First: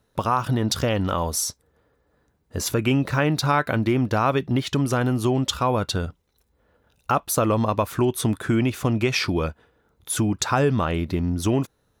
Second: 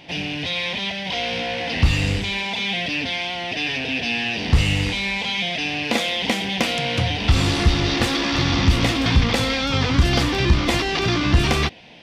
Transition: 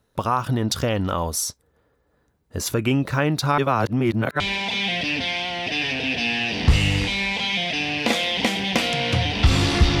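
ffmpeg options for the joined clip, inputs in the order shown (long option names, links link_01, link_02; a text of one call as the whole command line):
ffmpeg -i cue0.wav -i cue1.wav -filter_complex "[0:a]apad=whole_dur=10,atrim=end=10,asplit=2[link_01][link_02];[link_01]atrim=end=3.582[link_03];[link_02]atrim=start=3.578:end=4.402,asetpts=PTS-STARTPTS,areverse[link_04];[1:a]atrim=start=2.248:end=7.85[link_05];[link_03][link_04]acrossfade=duration=0.004:curve1=hsin:curve2=hsin[link_06];[link_06][link_05]acrossfade=duration=0.004:curve1=hsin:curve2=hsin" out.wav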